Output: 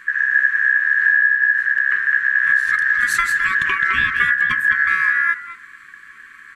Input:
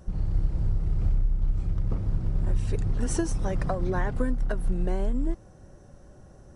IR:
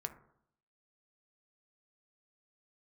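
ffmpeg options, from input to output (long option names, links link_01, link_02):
-filter_complex "[0:a]asplit=2[link_01][link_02];[link_02]adelay=210,highpass=300,lowpass=3400,asoftclip=type=hard:threshold=-23dB,volume=-7dB[link_03];[link_01][link_03]amix=inputs=2:normalize=0,aeval=exprs='val(0)*sin(2*PI*1700*n/s)':channel_layout=same,asplit=2[link_04][link_05];[1:a]atrim=start_sample=2205[link_06];[link_05][link_06]afir=irnorm=-1:irlink=0,volume=1dB[link_07];[link_04][link_07]amix=inputs=2:normalize=0,afftfilt=real='re*(1-between(b*sr/4096,430,1000))':imag='im*(1-between(b*sr/4096,430,1000))':win_size=4096:overlap=0.75,volume=5dB"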